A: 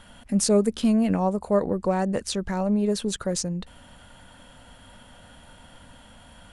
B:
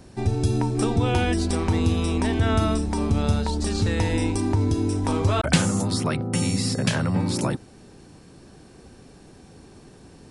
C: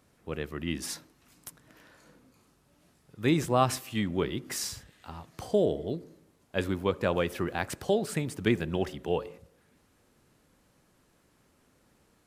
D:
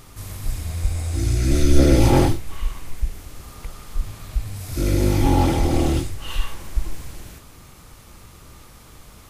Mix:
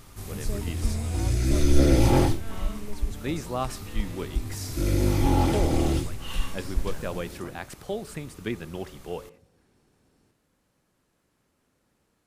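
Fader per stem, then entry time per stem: −18.5, −19.5, −5.5, −4.5 decibels; 0.00, 0.00, 0.00, 0.00 seconds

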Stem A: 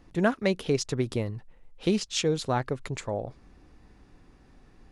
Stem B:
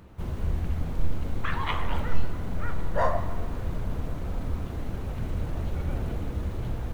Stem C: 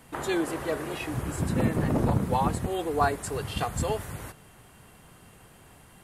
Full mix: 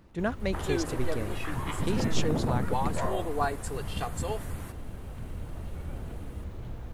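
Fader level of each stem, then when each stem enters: −6.0, −8.0, −4.5 decibels; 0.00, 0.00, 0.40 seconds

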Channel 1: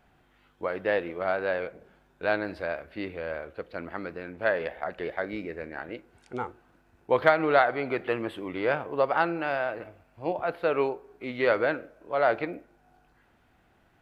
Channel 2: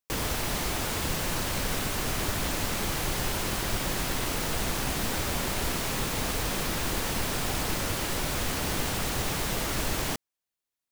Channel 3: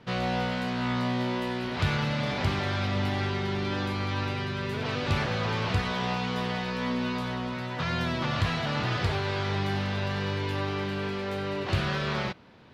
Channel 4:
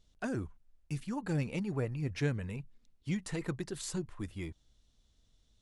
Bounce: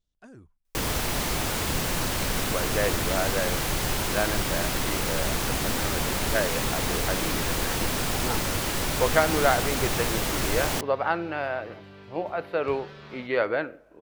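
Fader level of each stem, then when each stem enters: −1.0, +2.5, −16.0, −13.0 decibels; 1.90, 0.65, 0.95, 0.00 seconds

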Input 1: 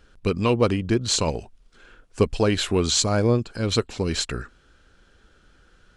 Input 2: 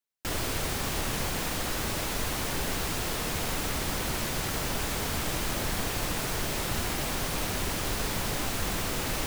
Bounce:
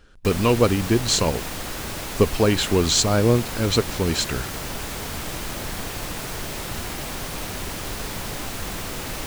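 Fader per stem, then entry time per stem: +2.0, 0.0 decibels; 0.00, 0.00 seconds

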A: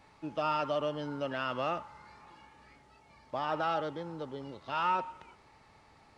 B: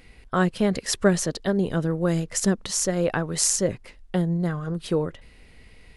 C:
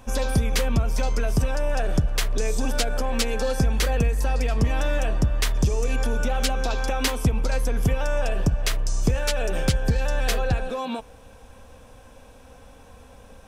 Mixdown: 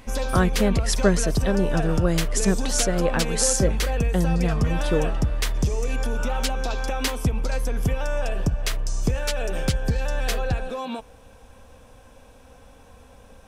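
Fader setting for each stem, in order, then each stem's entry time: −10.5, 0.0, −1.5 decibels; 1.45, 0.00, 0.00 seconds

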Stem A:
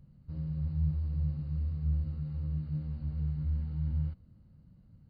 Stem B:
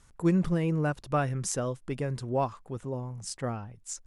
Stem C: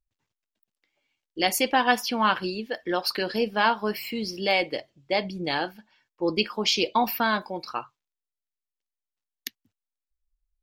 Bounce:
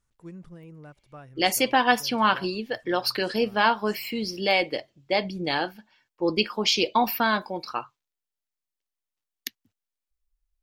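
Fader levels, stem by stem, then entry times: muted, −18.0 dB, +1.0 dB; muted, 0.00 s, 0.00 s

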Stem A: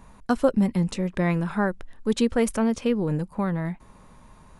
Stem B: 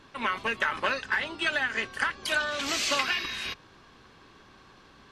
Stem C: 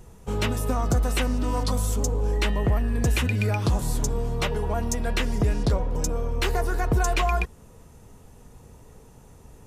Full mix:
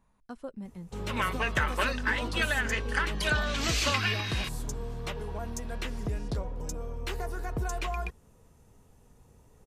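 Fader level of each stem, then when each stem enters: −20.0, −1.5, −10.0 decibels; 0.00, 0.95, 0.65 seconds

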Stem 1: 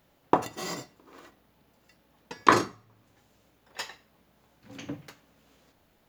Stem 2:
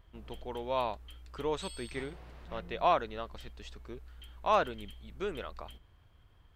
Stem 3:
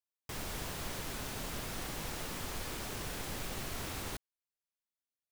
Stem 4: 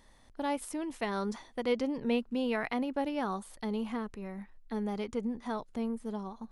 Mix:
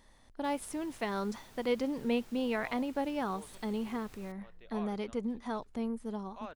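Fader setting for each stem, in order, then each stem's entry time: muted, −19.0 dB, −17.0 dB, −1.0 dB; muted, 1.90 s, 0.15 s, 0.00 s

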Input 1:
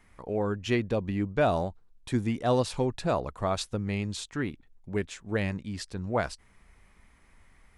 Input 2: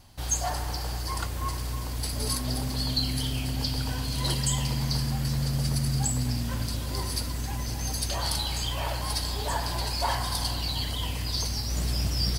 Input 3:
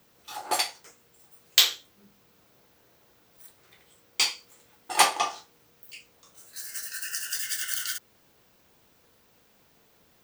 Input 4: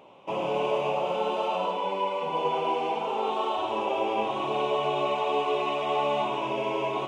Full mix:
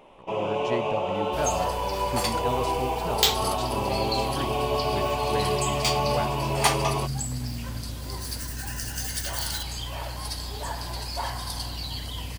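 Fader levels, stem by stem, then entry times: −5.5, −3.5, −3.0, 0.0 decibels; 0.00, 1.15, 1.65, 0.00 seconds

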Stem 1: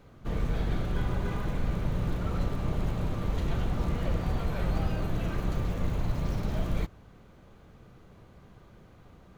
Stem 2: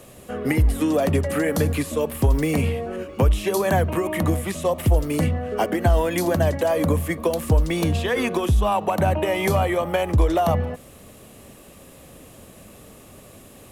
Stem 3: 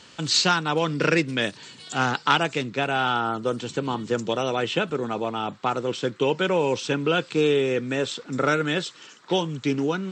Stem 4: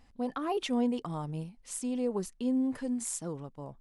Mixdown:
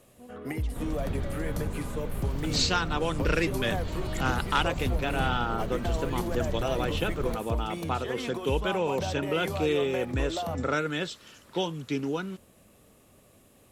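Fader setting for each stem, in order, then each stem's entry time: −4.5, −13.0, −6.0, −17.0 decibels; 0.50, 0.00, 2.25, 0.00 seconds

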